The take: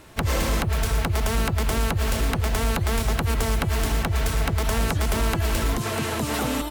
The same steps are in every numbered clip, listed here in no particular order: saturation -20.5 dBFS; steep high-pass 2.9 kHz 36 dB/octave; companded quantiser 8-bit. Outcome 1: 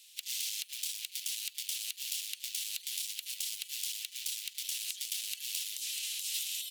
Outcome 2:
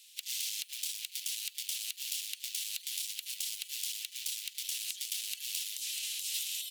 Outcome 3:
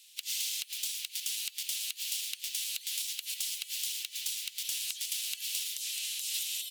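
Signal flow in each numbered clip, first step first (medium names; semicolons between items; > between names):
saturation > steep high-pass > companded quantiser; companded quantiser > saturation > steep high-pass; steep high-pass > companded quantiser > saturation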